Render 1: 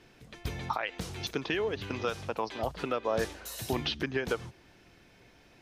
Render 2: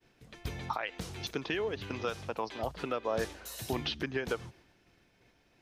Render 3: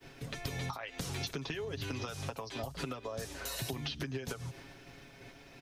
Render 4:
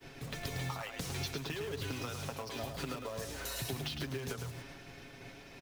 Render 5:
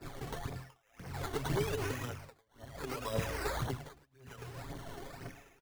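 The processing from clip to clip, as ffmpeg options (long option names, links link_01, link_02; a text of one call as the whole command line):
ffmpeg -i in.wav -af "agate=range=-33dB:threshold=-53dB:ratio=3:detection=peak,volume=-2.5dB" out.wav
ffmpeg -i in.wav -filter_complex "[0:a]acompressor=threshold=-38dB:ratio=6,aecho=1:1:7.3:0.59,acrossover=split=170|5200[link_01][link_02][link_03];[link_01]acompressor=threshold=-53dB:ratio=4[link_04];[link_02]acompressor=threshold=-53dB:ratio=4[link_05];[link_03]acompressor=threshold=-57dB:ratio=4[link_06];[link_04][link_05][link_06]amix=inputs=3:normalize=0,volume=12dB" out.wav
ffmpeg -i in.wav -filter_complex "[0:a]asplit=2[link_01][link_02];[link_02]aeval=exprs='(mod(94.4*val(0)+1,2)-1)/94.4':channel_layout=same,volume=-7.5dB[link_03];[link_01][link_03]amix=inputs=2:normalize=0,aecho=1:1:108:0.473,volume=-1.5dB" out.wav
ffmpeg -i in.wav -af "acrusher=samples=14:mix=1:aa=0.000001:lfo=1:lforange=8.4:lforate=0.87,aphaser=in_gain=1:out_gain=1:delay=2.9:decay=0.53:speed=1.9:type=triangular,tremolo=f=0.61:d=0.99,volume=4dB" out.wav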